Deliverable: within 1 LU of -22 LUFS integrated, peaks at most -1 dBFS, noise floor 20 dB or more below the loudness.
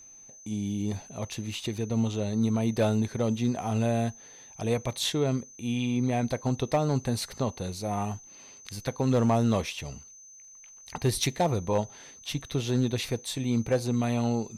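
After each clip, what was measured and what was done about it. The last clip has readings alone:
clipped 0.4%; flat tops at -17.5 dBFS; steady tone 6200 Hz; tone level -48 dBFS; loudness -29.0 LUFS; peak -17.5 dBFS; loudness target -22.0 LUFS
-> clip repair -17.5 dBFS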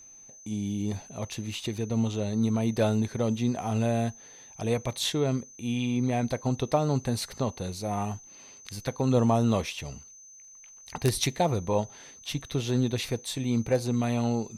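clipped 0.0%; steady tone 6200 Hz; tone level -48 dBFS
-> notch 6200 Hz, Q 30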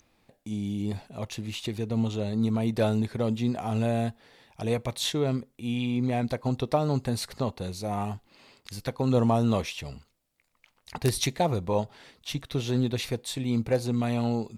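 steady tone none; loudness -29.0 LUFS; peak -9.0 dBFS; loudness target -22.0 LUFS
-> gain +7 dB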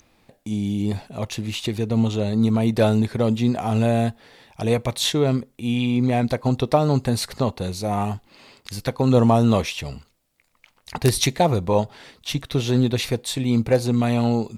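loudness -22.0 LUFS; peak -2.0 dBFS; noise floor -64 dBFS

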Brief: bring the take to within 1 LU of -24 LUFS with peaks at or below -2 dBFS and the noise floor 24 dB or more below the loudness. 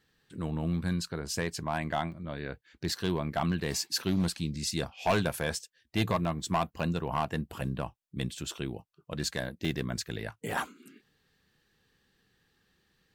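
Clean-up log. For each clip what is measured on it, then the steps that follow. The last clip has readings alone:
clipped 0.3%; flat tops at -20.5 dBFS; dropouts 5; longest dropout 1.5 ms; loudness -33.0 LUFS; peak -20.5 dBFS; loudness target -24.0 LUFS
-> clip repair -20.5 dBFS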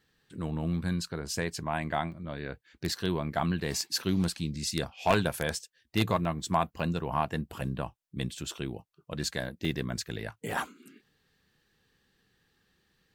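clipped 0.0%; dropouts 5; longest dropout 1.5 ms
-> interpolate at 2.12/6.25/6.8/9.65/10.51, 1.5 ms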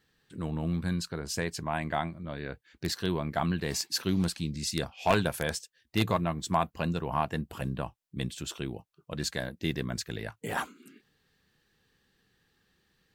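dropouts 0; loudness -32.5 LUFS; peak -11.5 dBFS; loudness target -24.0 LUFS
-> gain +8.5 dB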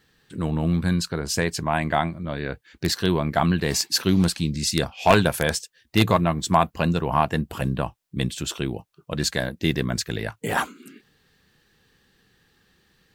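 loudness -24.0 LUFS; peak -3.0 dBFS; noise floor -67 dBFS

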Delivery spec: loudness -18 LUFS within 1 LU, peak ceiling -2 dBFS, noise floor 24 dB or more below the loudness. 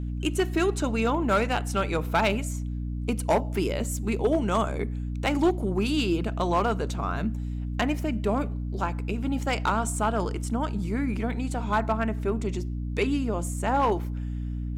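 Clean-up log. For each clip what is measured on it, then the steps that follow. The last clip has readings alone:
clipped 0.5%; flat tops at -16.0 dBFS; hum 60 Hz; harmonics up to 300 Hz; hum level -29 dBFS; loudness -27.5 LUFS; peak -16.0 dBFS; loudness target -18.0 LUFS
-> clip repair -16 dBFS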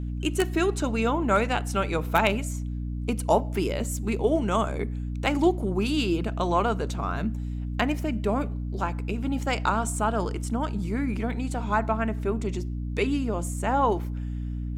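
clipped 0.0%; hum 60 Hz; harmonics up to 300 Hz; hum level -28 dBFS
-> de-hum 60 Hz, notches 5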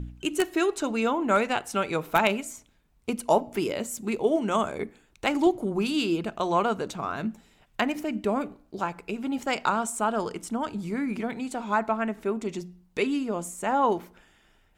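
hum none; loudness -27.5 LUFS; peak -7.5 dBFS; loudness target -18.0 LUFS
-> gain +9.5 dB; limiter -2 dBFS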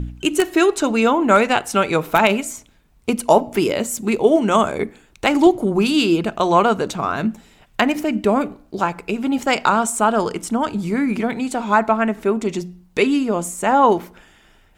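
loudness -18.5 LUFS; peak -2.0 dBFS; noise floor -54 dBFS

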